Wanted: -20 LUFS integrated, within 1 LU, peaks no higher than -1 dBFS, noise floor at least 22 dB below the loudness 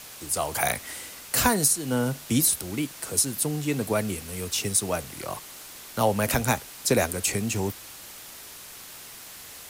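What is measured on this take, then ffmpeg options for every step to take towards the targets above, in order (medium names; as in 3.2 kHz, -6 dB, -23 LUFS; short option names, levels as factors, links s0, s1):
noise floor -44 dBFS; noise floor target -48 dBFS; loudness -25.5 LUFS; peak level -8.0 dBFS; loudness target -20.0 LUFS
-> -af "afftdn=nr=6:nf=-44"
-af "volume=1.88"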